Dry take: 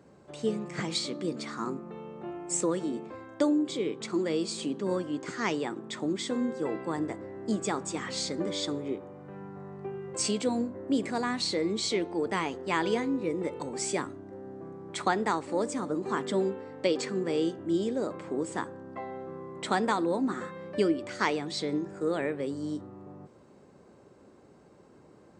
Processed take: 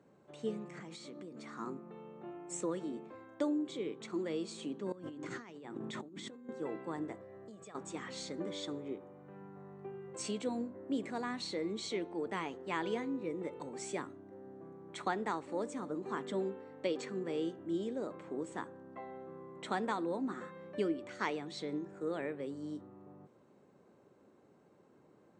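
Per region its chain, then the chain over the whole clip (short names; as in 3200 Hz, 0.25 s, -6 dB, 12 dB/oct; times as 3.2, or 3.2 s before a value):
0.73–1.55 bell 3600 Hz -4.5 dB 0.96 oct + compressor 12:1, threshold -35 dBFS
4.92–6.49 low shelf 200 Hz +8.5 dB + notches 50/100/150/200/250/300 Hz + negative-ratio compressor -39 dBFS
7.15–7.75 comb 1.7 ms, depth 64% + compressor 12:1, threshold -39 dBFS
whole clip: HPF 110 Hz; high shelf 8300 Hz -9.5 dB; notch 4900 Hz, Q 6.3; gain -8 dB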